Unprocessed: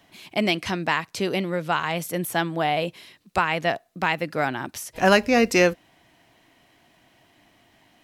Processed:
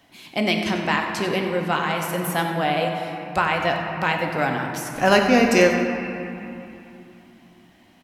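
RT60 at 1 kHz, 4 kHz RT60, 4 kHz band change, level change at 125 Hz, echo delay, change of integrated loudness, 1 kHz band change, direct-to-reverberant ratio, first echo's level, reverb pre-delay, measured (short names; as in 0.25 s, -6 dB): 3.1 s, 1.8 s, +1.5 dB, +3.0 dB, 93 ms, +2.0 dB, +2.5 dB, 1.5 dB, -12.0 dB, 4 ms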